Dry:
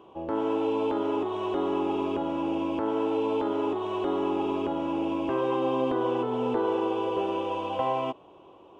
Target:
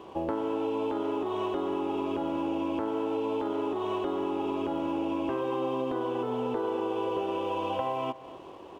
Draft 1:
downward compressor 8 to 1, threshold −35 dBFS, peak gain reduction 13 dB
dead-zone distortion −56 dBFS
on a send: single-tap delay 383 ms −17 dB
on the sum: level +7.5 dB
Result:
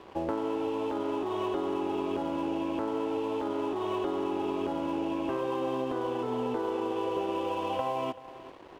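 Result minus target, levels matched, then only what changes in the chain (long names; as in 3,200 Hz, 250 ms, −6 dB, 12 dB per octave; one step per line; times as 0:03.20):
echo 138 ms late; dead-zone distortion: distortion +9 dB
change: dead-zone distortion −65.5 dBFS
change: single-tap delay 245 ms −17 dB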